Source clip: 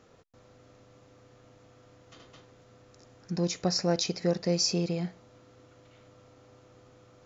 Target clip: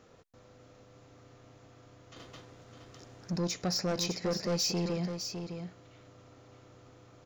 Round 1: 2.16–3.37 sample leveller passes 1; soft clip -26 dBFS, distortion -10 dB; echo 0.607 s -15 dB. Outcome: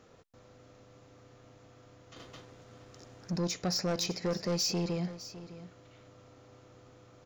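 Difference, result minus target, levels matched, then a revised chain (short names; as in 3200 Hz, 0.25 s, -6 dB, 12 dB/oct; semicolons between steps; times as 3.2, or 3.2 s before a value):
echo-to-direct -7.5 dB
2.16–3.37 sample leveller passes 1; soft clip -26 dBFS, distortion -10 dB; echo 0.607 s -7.5 dB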